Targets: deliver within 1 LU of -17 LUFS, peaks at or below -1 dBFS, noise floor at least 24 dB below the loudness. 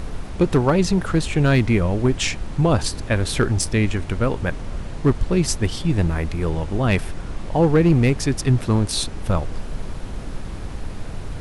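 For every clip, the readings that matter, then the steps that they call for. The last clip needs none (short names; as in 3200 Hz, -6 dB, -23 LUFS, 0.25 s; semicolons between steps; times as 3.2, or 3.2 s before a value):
clipped 0.7%; flat tops at -8.5 dBFS; noise floor -32 dBFS; noise floor target -45 dBFS; loudness -20.5 LUFS; peak -8.5 dBFS; loudness target -17.0 LUFS
-> clip repair -8.5 dBFS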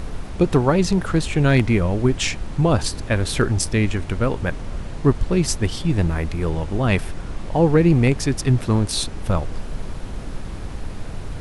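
clipped 0.0%; noise floor -32 dBFS; noise floor target -45 dBFS
-> noise print and reduce 13 dB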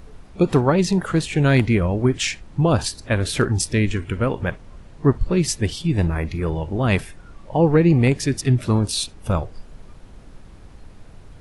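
noise floor -44 dBFS; noise floor target -45 dBFS
-> noise print and reduce 6 dB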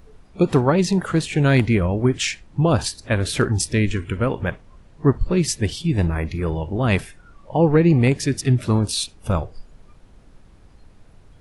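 noise floor -50 dBFS; loudness -20.5 LUFS; peak -2.5 dBFS; loudness target -17.0 LUFS
-> gain +3.5 dB; limiter -1 dBFS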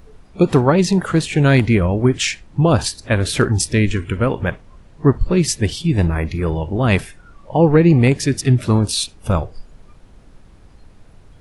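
loudness -17.0 LUFS; peak -1.0 dBFS; noise floor -46 dBFS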